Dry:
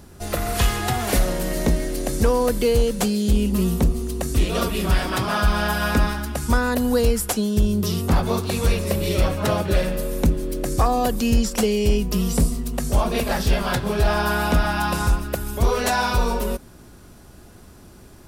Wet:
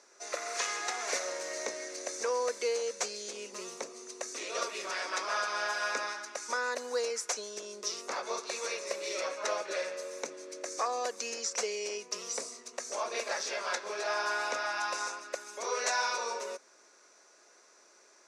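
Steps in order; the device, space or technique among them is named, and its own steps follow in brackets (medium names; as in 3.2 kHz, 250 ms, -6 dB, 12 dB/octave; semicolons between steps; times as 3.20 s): phone speaker on a table (cabinet simulation 490–7500 Hz, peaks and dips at 770 Hz -7 dB, 2.2 kHz +4 dB, 3.1 kHz -9 dB, 6.1 kHz +10 dB); trim -7.5 dB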